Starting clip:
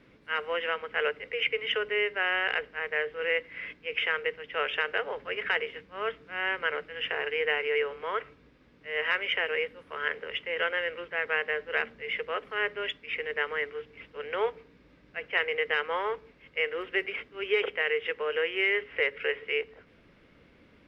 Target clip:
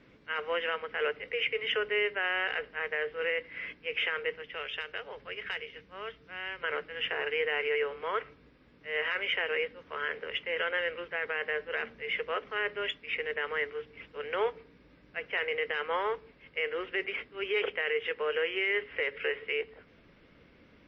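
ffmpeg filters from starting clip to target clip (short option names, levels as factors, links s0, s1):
-filter_complex "[0:a]asettb=1/sr,asplit=3[s0][s1][s2];[s0]atrim=end=4.424[s3];[s1]atrim=start=4.42:end=6.64,asetpts=PTS-STARTPTS,afade=t=in:d=0.004:c=qsin,afade=t=out:st=2.216:d=0.004:c=qsin,acrossover=split=160|3000[s4][s5][s6];[s5]acompressor=threshold=0.00501:ratio=2[s7];[s4][s7][s6]amix=inputs=3:normalize=0[s8];[s2]atrim=start=6.636[s9];[s3][s8]acrossfade=d=0.004:c1=hsin:c2=qsin[s10];[s10][s9]acrossfade=d=0.004:c1=qsin:c2=hsin,alimiter=limit=0.1:level=0:latency=1:release=10" -ar 22050 -c:a libmp3lame -b:a 32k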